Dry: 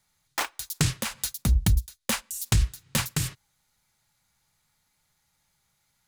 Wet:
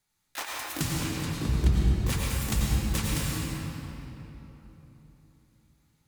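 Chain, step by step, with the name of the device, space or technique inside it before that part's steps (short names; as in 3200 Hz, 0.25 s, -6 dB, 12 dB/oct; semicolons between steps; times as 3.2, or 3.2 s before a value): 0.9–2.1 air absorption 85 m; shimmer-style reverb (harmoniser +12 st -5 dB; reverb RT60 3.6 s, pre-delay 86 ms, DRR -4.5 dB); gain -8 dB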